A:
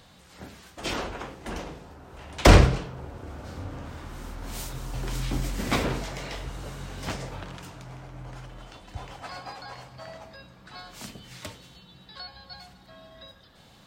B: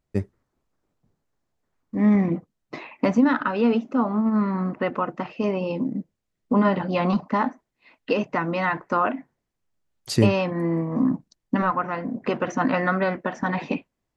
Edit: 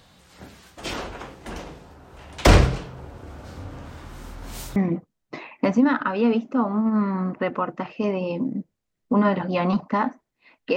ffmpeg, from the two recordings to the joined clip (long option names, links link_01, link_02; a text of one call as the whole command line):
ffmpeg -i cue0.wav -i cue1.wav -filter_complex "[0:a]apad=whole_dur=10.76,atrim=end=10.76,atrim=end=4.762[link_01];[1:a]atrim=start=2.158:end=8.16[link_02];[link_01][link_02]acrossfade=duration=0.004:curve1=hsin:curve2=hsin" out.wav